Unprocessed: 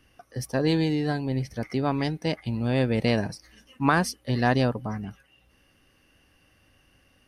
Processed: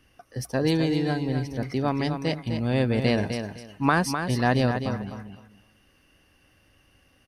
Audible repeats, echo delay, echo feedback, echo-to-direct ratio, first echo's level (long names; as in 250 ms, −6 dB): 3, 254 ms, 21%, −7.5 dB, −7.5 dB